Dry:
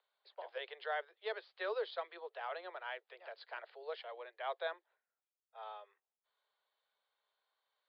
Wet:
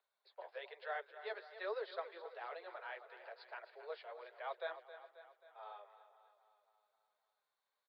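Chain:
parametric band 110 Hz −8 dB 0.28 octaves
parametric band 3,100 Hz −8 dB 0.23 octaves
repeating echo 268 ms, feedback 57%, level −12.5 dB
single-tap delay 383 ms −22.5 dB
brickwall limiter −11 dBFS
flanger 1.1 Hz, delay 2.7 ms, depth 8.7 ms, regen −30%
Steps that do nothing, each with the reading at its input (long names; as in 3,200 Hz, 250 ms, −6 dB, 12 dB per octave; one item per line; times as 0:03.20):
parametric band 110 Hz: nothing at its input below 320 Hz
brickwall limiter −11 dBFS: peak of its input −26.0 dBFS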